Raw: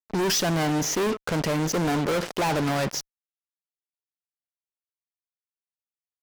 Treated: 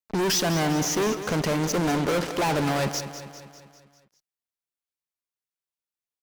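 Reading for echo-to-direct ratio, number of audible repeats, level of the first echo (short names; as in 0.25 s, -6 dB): -10.0 dB, 5, -11.5 dB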